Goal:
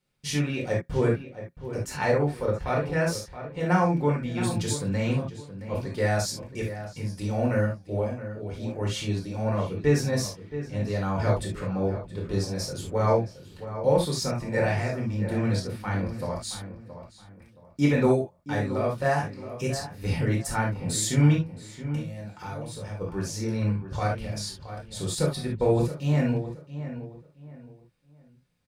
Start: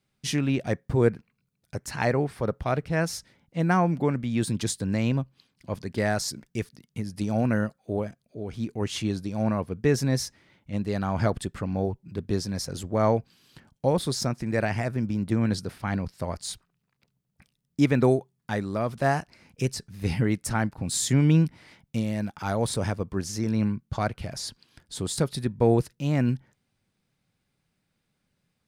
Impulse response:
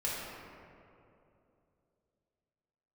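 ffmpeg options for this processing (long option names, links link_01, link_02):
-filter_complex "[0:a]asplit=3[link_01][link_02][link_03];[link_01]afade=type=out:start_time=21.34:duration=0.02[link_04];[link_02]acompressor=threshold=-34dB:ratio=12,afade=type=in:start_time=21.34:duration=0.02,afade=type=out:start_time=23:duration=0.02[link_05];[link_03]afade=type=in:start_time=23:duration=0.02[link_06];[link_04][link_05][link_06]amix=inputs=3:normalize=0,asplit=2[link_07][link_08];[link_08]adelay=672,lowpass=frequency=2200:poles=1,volume=-11.5dB,asplit=2[link_09][link_10];[link_10]adelay=672,lowpass=frequency=2200:poles=1,volume=0.3,asplit=2[link_11][link_12];[link_12]adelay=672,lowpass=frequency=2200:poles=1,volume=0.3[link_13];[link_07][link_09][link_11][link_13]amix=inputs=4:normalize=0[link_14];[1:a]atrim=start_sample=2205,atrim=end_sample=3528[link_15];[link_14][link_15]afir=irnorm=-1:irlink=0,volume=-2dB"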